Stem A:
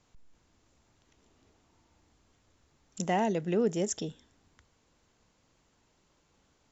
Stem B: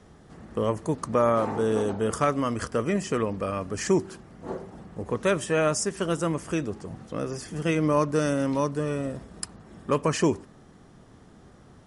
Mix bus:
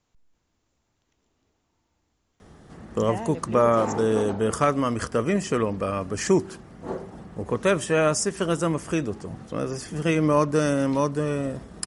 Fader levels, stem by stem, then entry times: −5.5, +2.5 decibels; 0.00, 2.40 seconds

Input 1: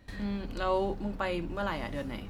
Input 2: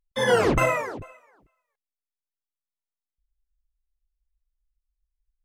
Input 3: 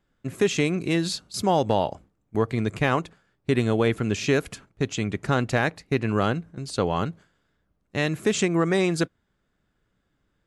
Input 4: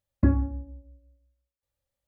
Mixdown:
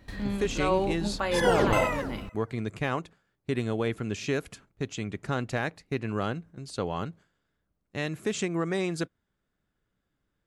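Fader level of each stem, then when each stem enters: +2.5 dB, −4.5 dB, −7.0 dB, muted; 0.00 s, 1.15 s, 0.00 s, muted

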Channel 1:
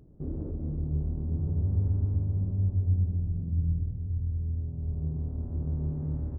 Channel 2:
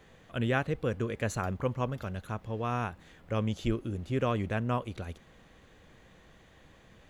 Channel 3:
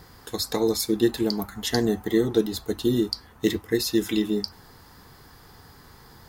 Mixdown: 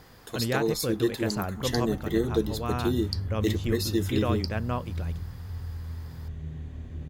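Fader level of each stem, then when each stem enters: −5.5, 0.0, −4.5 decibels; 1.40, 0.00, 0.00 seconds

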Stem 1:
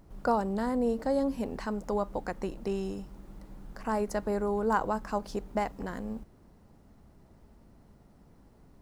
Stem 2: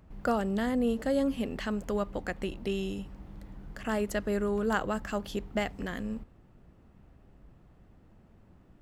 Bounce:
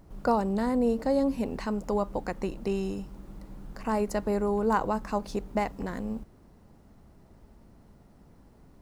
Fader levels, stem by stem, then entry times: +2.0, −12.0 decibels; 0.00, 0.00 seconds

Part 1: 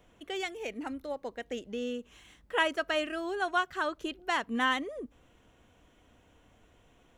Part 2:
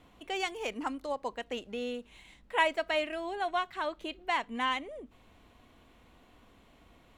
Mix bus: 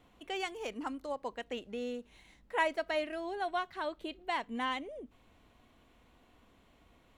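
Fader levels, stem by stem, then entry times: −14.5, −4.5 decibels; 0.00, 0.00 seconds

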